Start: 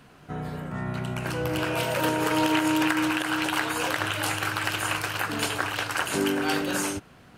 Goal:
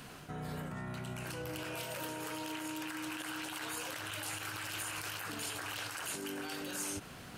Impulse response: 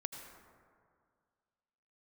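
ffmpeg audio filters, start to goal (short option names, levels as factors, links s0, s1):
-af "areverse,acompressor=threshold=0.0158:ratio=6,areverse,alimiter=level_in=3.76:limit=0.0631:level=0:latency=1:release=40,volume=0.266,highshelf=f=3600:g=9.5,volume=1.19"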